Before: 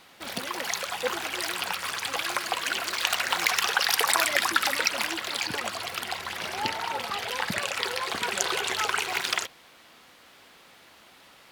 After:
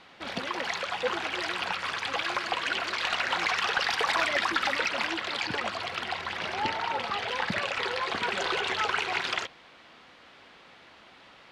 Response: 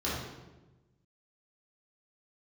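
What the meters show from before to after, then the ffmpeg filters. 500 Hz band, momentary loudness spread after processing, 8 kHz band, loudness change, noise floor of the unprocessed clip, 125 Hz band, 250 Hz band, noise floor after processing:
+0.5 dB, 6 LU, −12.5 dB, −2.0 dB, −54 dBFS, +1.0 dB, +1.0 dB, −54 dBFS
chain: -af "asoftclip=type=tanh:threshold=-19dB,lowpass=3900,volume=1.5dB"

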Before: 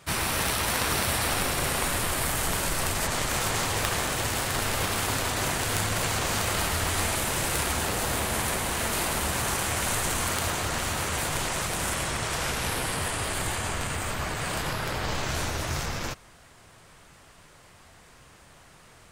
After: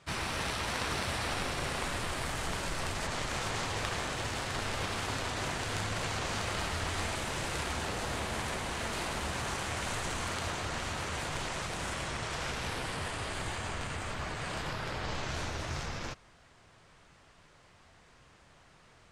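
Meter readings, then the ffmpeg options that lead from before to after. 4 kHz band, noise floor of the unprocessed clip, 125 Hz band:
−7.0 dB, −54 dBFS, −6.5 dB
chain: -af "lowpass=6300,volume=-6.5dB"

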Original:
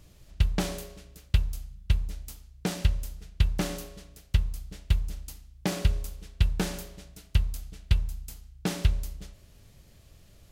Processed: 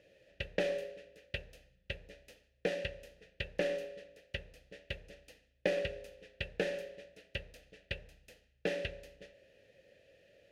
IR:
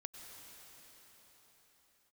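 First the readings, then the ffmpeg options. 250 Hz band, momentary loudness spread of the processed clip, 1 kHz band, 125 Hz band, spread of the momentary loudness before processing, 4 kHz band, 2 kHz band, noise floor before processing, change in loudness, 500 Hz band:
−11.5 dB, 21 LU, −10.0 dB, −20.5 dB, 17 LU, −6.5 dB, 0.0 dB, −56 dBFS, −9.0 dB, +4.0 dB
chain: -filter_complex "[0:a]asplit=3[link_01][link_02][link_03];[link_01]bandpass=frequency=530:width_type=q:width=8,volume=0dB[link_04];[link_02]bandpass=frequency=1840:width_type=q:width=8,volume=-6dB[link_05];[link_03]bandpass=frequency=2480:width_type=q:width=8,volume=-9dB[link_06];[link_04][link_05][link_06]amix=inputs=3:normalize=0,aeval=exprs='0.0422*(cos(1*acos(clip(val(0)/0.0422,-1,1)))-cos(1*PI/2))+0.00075*(cos(4*acos(clip(val(0)/0.0422,-1,1)))-cos(4*PI/2))':channel_layout=same,bandreject=frequency=7600:width=13,volume=10.5dB"

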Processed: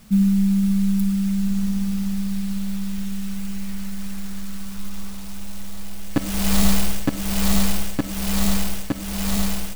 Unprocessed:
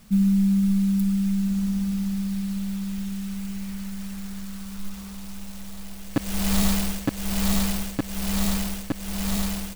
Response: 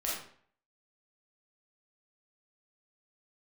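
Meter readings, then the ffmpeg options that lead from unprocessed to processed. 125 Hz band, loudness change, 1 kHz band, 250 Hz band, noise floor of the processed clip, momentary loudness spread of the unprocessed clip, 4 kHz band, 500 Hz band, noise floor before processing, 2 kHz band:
+2.0 dB, +2.5 dB, +3.5 dB, +2.0 dB, −29 dBFS, 16 LU, +3.0 dB, +3.5 dB, −37 dBFS, +3.5 dB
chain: -filter_complex "[0:a]asplit=2[link_01][link_02];[1:a]atrim=start_sample=2205,adelay=14[link_03];[link_02][link_03]afir=irnorm=-1:irlink=0,volume=-16dB[link_04];[link_01][link_04]amix=inputs=2:normalize=0,volume=3dB"

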